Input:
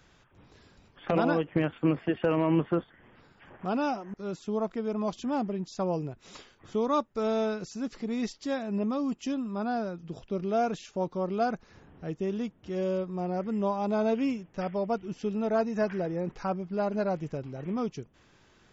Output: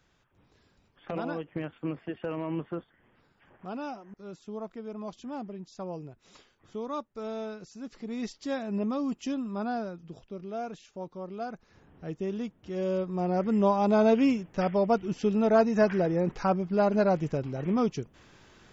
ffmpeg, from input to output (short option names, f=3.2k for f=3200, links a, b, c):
-af "volume=13dB,afade=t=in:st=7.77:d=0.82:silence=0.421697,afade=t=out:st=9.61:d=0.74:silence=0.398107,afade=t=in:st=11.51:d=0.6:silence=0.446684,afade=t=in:st=12.74:d=0.8:silence=0.473151"